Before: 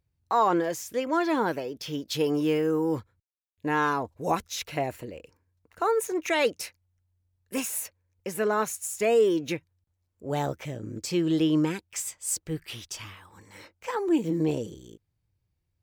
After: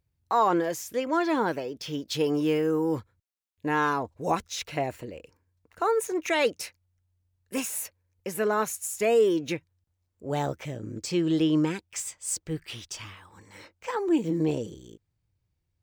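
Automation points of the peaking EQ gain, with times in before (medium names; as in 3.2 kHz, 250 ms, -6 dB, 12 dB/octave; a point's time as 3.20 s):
peaking EQ 12 kHz 0.24 oct
+2 dB
from 0.97 s -9 dB
from 2.46 s -1.5 dB
from 3.99 s -12.5 dB
from 5.11 s -4.5 dB
from 7.80 s +2.5 dB
from 9.33 s -7.5 dB
from 10.93 s -14 dB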